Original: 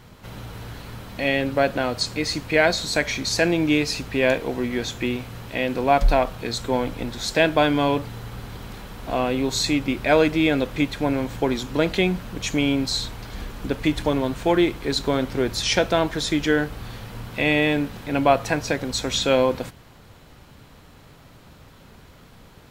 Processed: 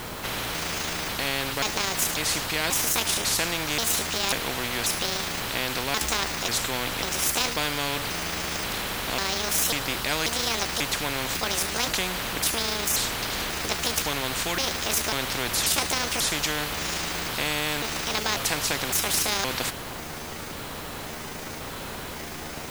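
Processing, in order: trilling pitch shifter +7.5 st, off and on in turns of 0.54 s; requantised 10-bit, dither triangular; spectral compressor 4:1; gain -3.5 dB

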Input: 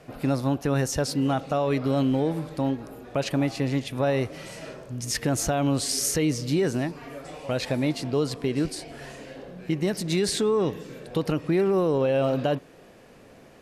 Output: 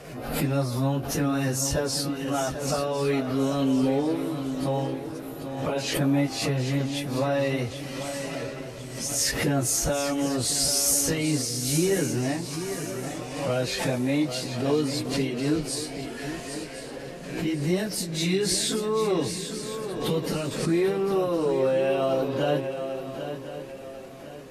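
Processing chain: in parallel at -3 dB: compressor 6:1, threshold -34 dBFS, peak gain reduction 14 dB; on the sum: plain phase-vocoder stretch 1.8×; high shelf 5200 Hz +6 dB; swung echo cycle 1.052 s, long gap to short 3:1, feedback 35%, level -9.5 dB; backwards sustainer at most 60 dB/s

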